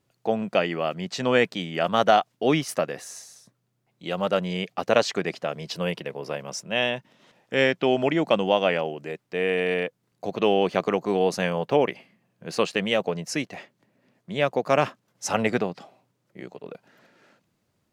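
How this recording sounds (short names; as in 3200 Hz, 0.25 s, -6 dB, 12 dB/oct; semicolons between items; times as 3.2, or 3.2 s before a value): noise floor -74 dBFS; spectral tilt -4.5 dB/oct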